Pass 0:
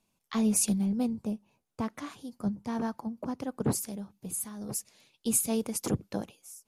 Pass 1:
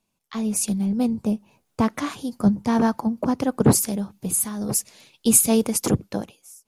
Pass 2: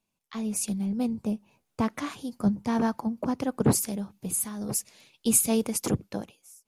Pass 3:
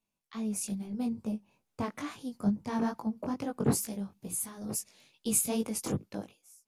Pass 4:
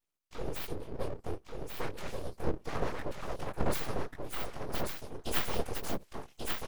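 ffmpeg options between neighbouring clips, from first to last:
-af "dynaudnorm=f=230:g=9:m=13dB"
-af "equalizer=f=2.4k:t=o:w=0.77:g=2,volume=-6dB"
-af "flanger=delay=18:depth=3.5:speed=2.3,volume=-2.5dB"
-af "afftfilt=real='hypot(re,im)*cos(2*PI*random(0))':imag='hypot(re,im)*sin(2*PI*random(1))':win_size=512:overlap=0.75,aeval=exprs='abs(val(0))':c=same,aecho=1:1:1137:0.631,volume=5.5dB"

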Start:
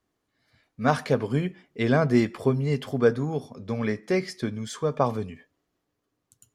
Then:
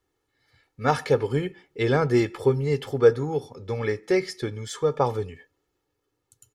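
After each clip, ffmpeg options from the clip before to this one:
-af "aecho=1:1:2.3:0.68"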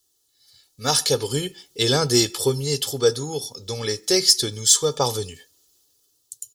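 -af "dynaudnorm=f=330:g=5:m=11.5dB,aexciter=amount=7.5:drive=9:freq=3.3k,volume=-6.5dB"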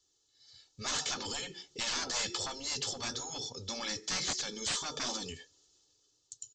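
-af "aresample=16000,asoftclip=type=tanh:threshold=-18.5dB,aresample=44100,afftfilt=real='re*lt(hypot(re,im),0.112)':imag='im*lt(hypot(re,im),0.112)':win_size=1024:overlap=0.75,volume=-3dB"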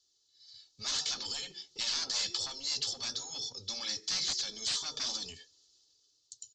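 -filter_complex "[0:a]equalizer=f=4.5k:w=1.2:g=12,acrossover=split=140|890[a][b][c];[b]aeval=exprs='clip(val(0),-1,0.00447)':c=same[d];[a][d][c]amix=inputs=3:normalize=0,volume=-7dB"

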